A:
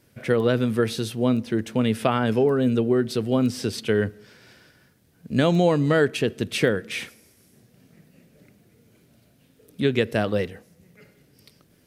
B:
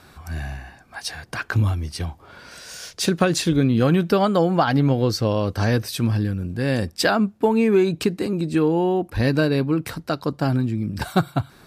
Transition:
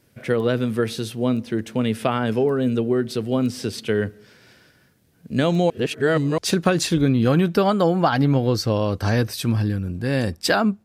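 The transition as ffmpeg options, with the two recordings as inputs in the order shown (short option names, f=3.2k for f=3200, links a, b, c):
-filter_complex "[0:a]apad=whole_dur=10.84,atrim=end=10.84,asplit=2[a][b];[a]atrim=end=5.702[c];[b]atrim=start=5.698:end=6.382,asetpts=PTS-STARTPTS,areverse[d];[1:a]atrim=start=2.928:end=7.39[e];[c][d]acrossfade=d=0.004:c1=hsin:c2=hsin[f];[f][e]acrossfade=d=0.004:c1=hsin:c2=hsin"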